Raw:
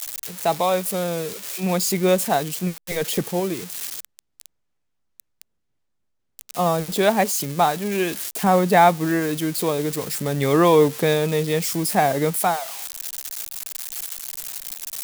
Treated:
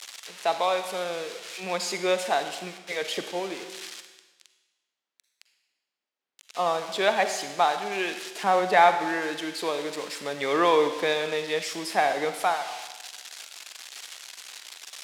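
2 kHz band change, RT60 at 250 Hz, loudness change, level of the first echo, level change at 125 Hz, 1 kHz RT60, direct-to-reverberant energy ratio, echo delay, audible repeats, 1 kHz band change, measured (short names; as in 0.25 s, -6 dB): -0.5 dB, 1.2 s, -4.5 dB, none, -20.5 dB, 1.2 s, 8.0 dB, none, none, -3.0 dB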